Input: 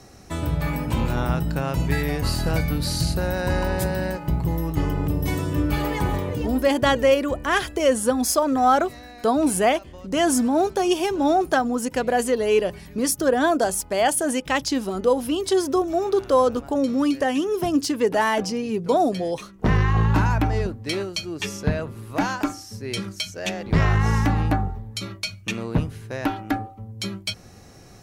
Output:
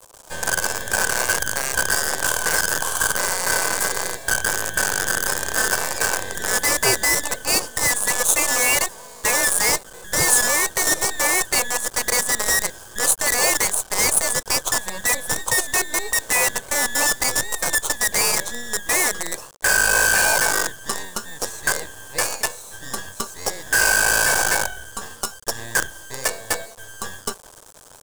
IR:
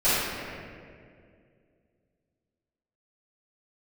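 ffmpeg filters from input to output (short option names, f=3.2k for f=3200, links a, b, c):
-af "afftfilt=real='real(if(lt(b,272),68*(eq(floor(b/68),0)*2+eq(floor(b/68),1)*0+eq(floor(b/68),2)*3+eq(floor(b/68),3)*1)+mod(b,68),b),0)':imag='imag(if(lt(b,272),68*(eq(floor(b/68),0)*2+eq(floor(b/68),1)*0+eq(floor(b/68),2)*3+eq(floor(b/68),3)*1)+mod(b,68),b),0)':win_size=2048:overlap=0.75,acrusher=bits=4:dc=4:mix=0:aa=0.000001,equalizer=f=250:t=o:w=1:g=-4,equalizer=f=500:t=o:w=1:g=9,equalizer=f=1k:t=o:w=1:g=9,equalizer=f=2k:t=o:w=1:g=-11,equalizer=f=4k:t=o:w=1:g=-5,equalizer=f=8k:t=o:w=1:g=9,volume=2dB"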